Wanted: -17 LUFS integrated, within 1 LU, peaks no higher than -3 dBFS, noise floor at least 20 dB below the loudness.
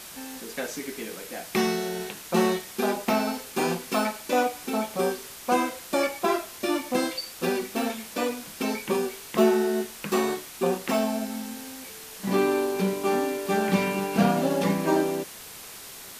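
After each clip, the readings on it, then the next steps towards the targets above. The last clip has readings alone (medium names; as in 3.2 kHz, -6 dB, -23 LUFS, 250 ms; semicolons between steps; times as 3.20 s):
noise floor -43 dBFS; noise floor target -47 dBFS; loudness -27.0 LUFS; peak level -8.0 dBFS; loudness target -17.0 LUFS
-> noise print and reduce 6 dB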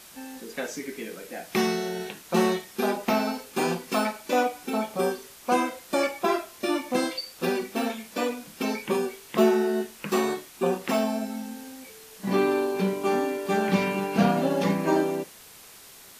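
noise floor -49 dBFS; loudness -27.0 LUFS; peak level -8.0 dBFS; loudness target -17.0 LUFS
-> trim +10 dB; peak limiter -3 dBFS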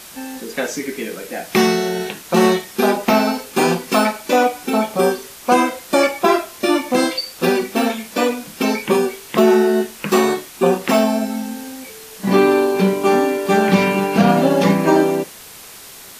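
loudness -17.5 LUFS; peak level -3.0 dBFS; noise floor -39 dBFS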